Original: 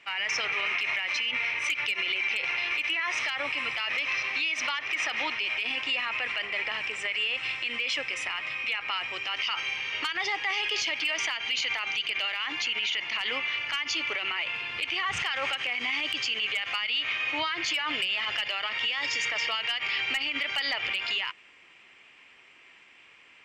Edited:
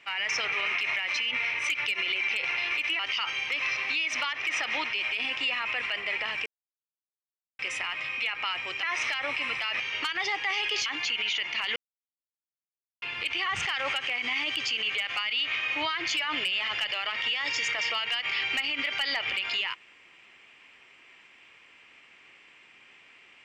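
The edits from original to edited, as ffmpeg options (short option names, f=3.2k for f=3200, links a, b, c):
-filter_complex "[0:a]asplit=10[a][b][c][d][e][f][g][h][i][j];[a]atrim=end=2.992[k];[b]atrim=start=9.288:end=9.802[l];[c]atrim=start=3.958:end=6.92,asetpts=PTS-STARTPTS,afade=t=out:st=2.958:d=0.004:c=hsin[m];[d]atrim=start=6.92:end=8.05,asetpts=PTS-STARTPTS,volume=0[n];[e]atrim=start=8.05:end=9.292,asetpts=PTS-STARTPTS,afade=t=in:d=0.004:c=hsin[o];[f]atrim=start=2.988:end=3.962[p];[g]atrim=start=9.798:end=10.862[q];[h]atrim=start=12.428:end=13.33,asetpts=PTS-STARTPTS,afade=t=out:st=0.898:d=0.004:c=hsin[r];[i]atrim=start=13.33:end=14.59,asetpts=PTS-STARTPTS,volume=0[s];[j]atrim=start=14.59,asetpts=PTS-STARTPTS,afade=t=in:d=0.004:c=hsin[t];[k][l]acrossfade=d=0.004:c1=hsin:c2=hsin[u];[m][n][o]concat=n=3:v=0:a=1[v];[u][v]acrossfade=d=0.004:c1=hsin:c2=hsin[w];[w][p]acrossfade=d=0.004:c1=hsin:c2=hsin[x];[x][q]acrossfade=d=0.004:c1=hsin:c2=hsin[y];[r][s][t]concat=n=3:v=0:a=1[z];[y][z]acrossfade=d=0.004:c1=hsin:c2=hsin"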